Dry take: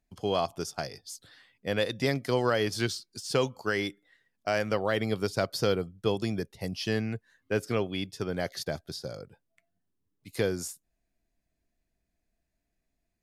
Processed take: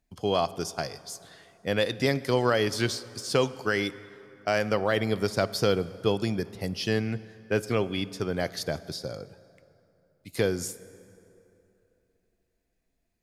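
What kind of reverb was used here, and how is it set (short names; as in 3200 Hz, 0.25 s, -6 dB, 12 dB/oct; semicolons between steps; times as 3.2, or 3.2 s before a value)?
plate-style reverb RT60 3 s, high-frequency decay 0.6×, DRR 16 dB; gain +2.5 dB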